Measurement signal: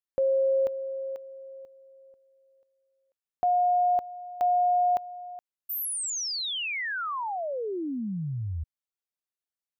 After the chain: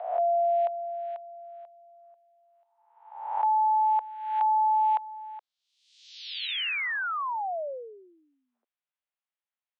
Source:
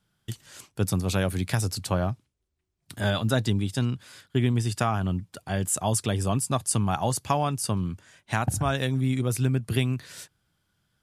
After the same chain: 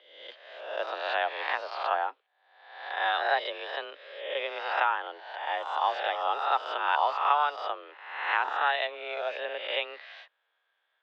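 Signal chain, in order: reverse spectral sustain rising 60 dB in 0.88 s; mistuned SSB +150 Hz 420–3300 Hz

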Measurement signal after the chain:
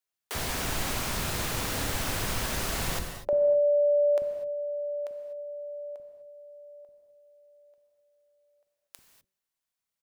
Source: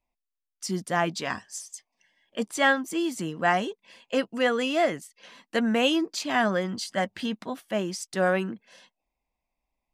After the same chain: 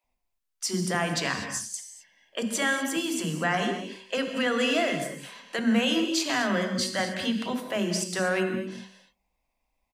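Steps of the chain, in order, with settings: de-hum 191.1 Hz, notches 3; dynamic bell 750 Hz, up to -5 dB, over -38 dBFS, Q 0.9; peak limiter -20 dBFS; bands offset in time highs, lows 40 ms, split 340 Hz; gated-style reverb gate 270 ms flat, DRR 5 dB; trim +4.5 dB

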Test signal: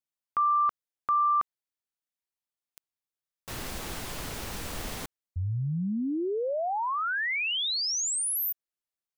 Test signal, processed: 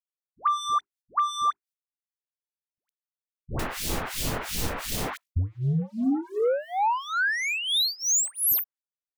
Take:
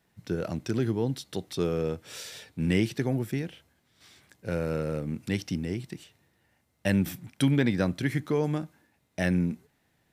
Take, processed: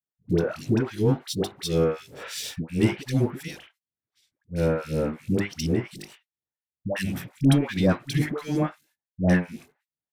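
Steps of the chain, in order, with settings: hum notches 50/100/150/200/250/300/350/400 Hz; gate -53 dBFS, range -31 dB; waveshaping leveller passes 2; in parallel at -0.5 dB: compression, threshold -29 dBFS; on the sum: harmonic tremolo 2.8 Hz, depth 100%, crossover 2.3 kHz; phase dispersion highs, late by 115 ms, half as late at 650 Hz

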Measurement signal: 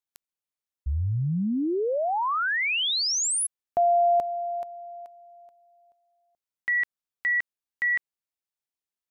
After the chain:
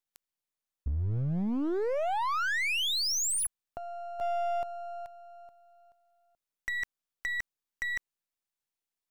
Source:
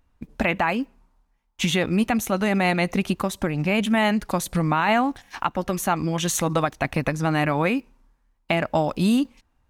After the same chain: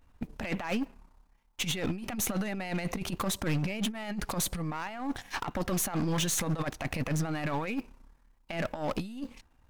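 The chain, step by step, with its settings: partial rectifier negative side -7 dB; compressor with a negative ratio -29 dBFS, ratio -0.5; hard clipper -25.5 dBFS

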